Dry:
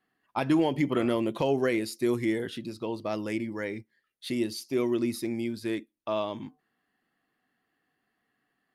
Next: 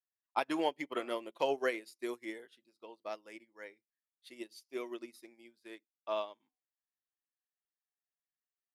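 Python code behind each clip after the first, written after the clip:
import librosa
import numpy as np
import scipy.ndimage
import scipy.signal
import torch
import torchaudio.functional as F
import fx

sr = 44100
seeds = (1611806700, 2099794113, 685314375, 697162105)

y = scipy.signal.sosfilt(scipy.signal.butter(2, 500.0, 'highpass', fs=sr, output='sos'), x)
y = fx.upward_expand(y, sr, threshold_db=-46.0, expansion=2.5)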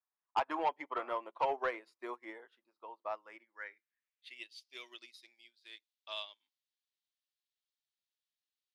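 y = fx.filter_sweep_bandpass(x, sr, from_hz=1000.0, to_hz=3700.0, start_s=3.12, end_s=4.74, q=2.3)
y = 10.0 ** (-32.5 / 20.0) * np.tanh(y / 10.0 ** (-32.5 / 20.0))
y = y * librosa.db_to_amplitude(8.5)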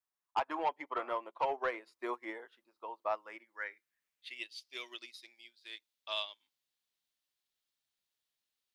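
y = fx.rider(x, sr, range_db=3, speed_s=0.5)
y = y * librosa.db_to_amplitude(2.0)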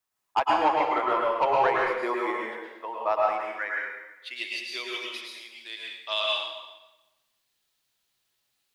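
y = fx.rev_plate(x, sr, seeds[0], rt60_s=1.1, hf_ratio=0.85, predelay_ms=95, drr_db=-3.0)
y = y * librosa.db_to_amplitude(8.0)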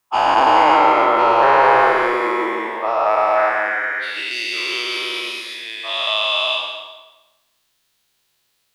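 y = fx.spec_dilate(x, sr, span_ms=480)
y = y + 10.0 ** (-10.0 / 20.0) * np.pad(y, (int(172 * sr / 1000.0), 0))[:len(y)]
y = y * librosa.db_to_amplitude(2.5)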